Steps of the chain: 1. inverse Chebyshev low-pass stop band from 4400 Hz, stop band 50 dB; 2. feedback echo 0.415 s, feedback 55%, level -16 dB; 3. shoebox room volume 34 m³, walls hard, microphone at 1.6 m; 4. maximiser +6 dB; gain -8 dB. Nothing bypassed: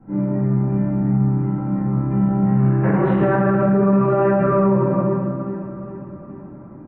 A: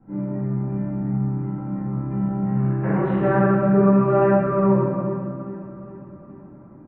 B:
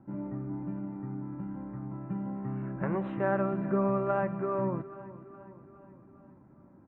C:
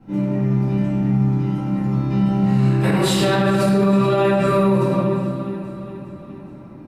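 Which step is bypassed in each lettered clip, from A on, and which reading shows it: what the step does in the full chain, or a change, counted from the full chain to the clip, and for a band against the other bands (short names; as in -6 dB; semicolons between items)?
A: 4, 125 Hz band -2.0 dB; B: 3, crest factor change +8.5 dB; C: 1, 2 kHz band +3.0 dB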